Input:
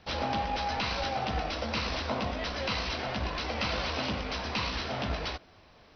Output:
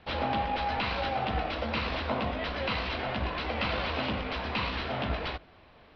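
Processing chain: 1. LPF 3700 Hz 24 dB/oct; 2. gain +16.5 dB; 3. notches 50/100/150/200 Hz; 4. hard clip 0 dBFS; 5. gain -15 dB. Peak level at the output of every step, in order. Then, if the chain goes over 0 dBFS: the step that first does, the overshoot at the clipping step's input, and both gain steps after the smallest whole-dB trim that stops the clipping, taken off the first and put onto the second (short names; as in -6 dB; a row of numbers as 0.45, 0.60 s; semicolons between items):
-19.5, -3.0, -3.0, -3.0, -18.0 dBFS; no overload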